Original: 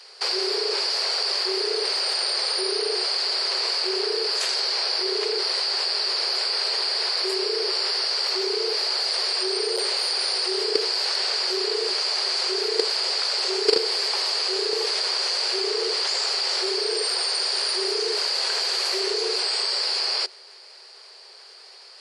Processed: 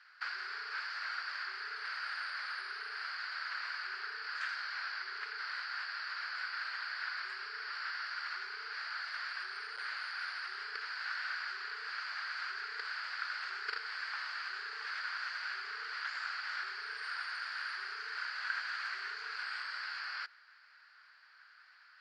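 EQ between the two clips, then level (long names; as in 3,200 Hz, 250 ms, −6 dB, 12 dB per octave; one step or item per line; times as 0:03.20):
four-pole ladder band-pass 1,700 Hz, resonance 55%
parametric band 1,500 Hz +9.5 dB 0.92 octaves
−4.5 dB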